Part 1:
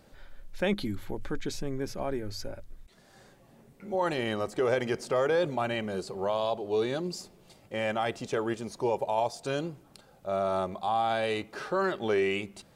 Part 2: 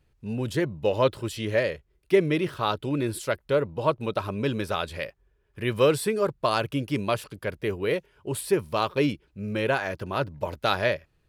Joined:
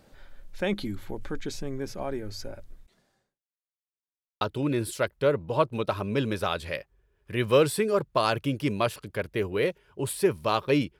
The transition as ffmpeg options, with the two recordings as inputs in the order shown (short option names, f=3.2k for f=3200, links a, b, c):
-filter_complex "[0:a]apad=whole_dur=10.99,atrim=end=10.99,asplit=2[a][b];[a]atrim=end=3.44,asetpts=PTS-STARTPTS,afade=t=out:st=2.72:d=0.72:c=qua[c];[b]atrim=start=3.44:end=4.41,asetpts=PTS-STARTPTS,volume=0[d];[1:a]atrim=start=2.69:end=9.27,asetpts=PTS-STARTPTS,afade=t=in:d=0.004:c=hsin[e];[c][d][e]concat=n=3:v=0:a=1"